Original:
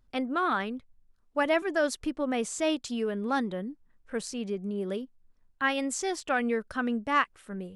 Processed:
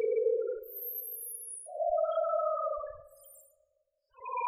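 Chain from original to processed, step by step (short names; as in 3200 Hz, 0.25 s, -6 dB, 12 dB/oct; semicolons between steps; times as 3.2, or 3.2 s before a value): Doppler pass-by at 2.47, 10 m/s, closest 3.3 m; reverb removal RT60 1.9 s; spectral gate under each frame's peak -30 dB strong; sample leveller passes 3; in parallel at -8.5 dB: fuzz box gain 56 dB, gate -53 dBFS; on the sum: Paulstretch 16×, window 0.05 s, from 5.86; loudest bins only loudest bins 4; on a send at -16 dB: reverb RT60 2.1 s, pre-delay 3 ms; on the sum: speed mistake 45 rpm record played at 78 rpm; gain -5.5 dB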